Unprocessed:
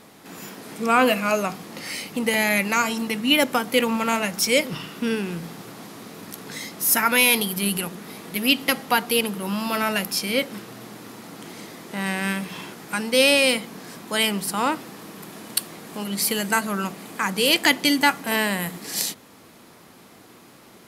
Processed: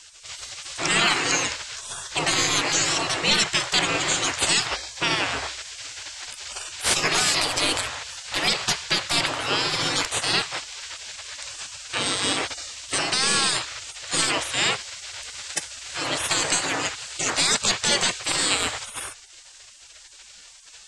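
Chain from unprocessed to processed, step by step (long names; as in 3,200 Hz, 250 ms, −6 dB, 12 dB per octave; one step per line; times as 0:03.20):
stylus tracing distortion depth 0.021 ms
elliptic low-pass filter 7,900 Hz, stop band 60 dB
gate on every frequency bin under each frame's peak −20 dB weak
boost into a limiter +22.5 dB
level −7.5 dB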